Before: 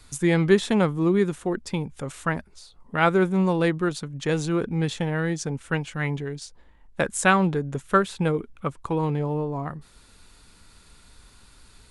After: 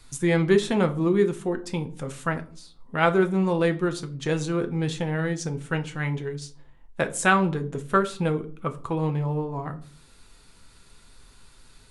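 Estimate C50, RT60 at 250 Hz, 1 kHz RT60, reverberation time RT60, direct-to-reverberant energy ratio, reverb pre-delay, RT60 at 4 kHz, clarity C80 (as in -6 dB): 17.0 dB, 0.65 s, 0.40 s, 0.45 s, 6.5 dB, 6 ms, 0.30 s, 21.5 dB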